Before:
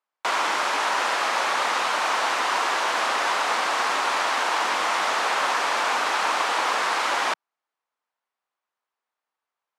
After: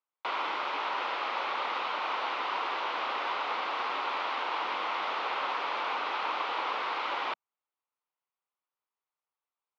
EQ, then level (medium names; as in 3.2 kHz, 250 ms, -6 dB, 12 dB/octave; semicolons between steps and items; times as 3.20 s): cabinet simulation 190–3700 Hz, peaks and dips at 230 Hz -3 dB, 670 Hz -4 dB, 1.7 kHz -8 dB; -7.0 dB